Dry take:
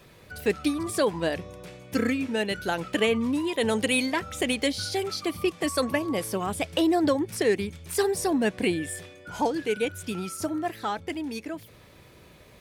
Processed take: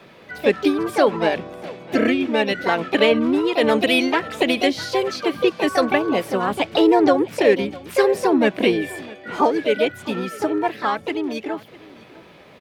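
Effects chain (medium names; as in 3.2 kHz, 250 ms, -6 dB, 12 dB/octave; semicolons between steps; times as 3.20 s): harmony voices +5 st -5 dB; three-band isolator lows -16 dB, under 160 Hz, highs -15 dB, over 4.1 kHz; delay 653 ms -21 dB; trim +7 dB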